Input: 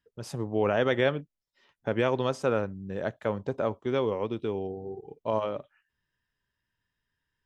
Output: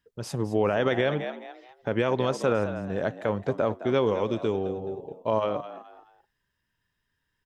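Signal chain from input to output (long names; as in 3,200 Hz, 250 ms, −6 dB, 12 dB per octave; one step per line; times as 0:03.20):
0:04.06–0:04.54: parametric band 6,800 Hz +13 dB 0.61 octaves
echo with shifted repeats 213 ms, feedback 33%, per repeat +82 Hz, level −13.5 dB
brickwall limiter −17.5 dBFS, peak gain reduction 6 dB
level +4 dB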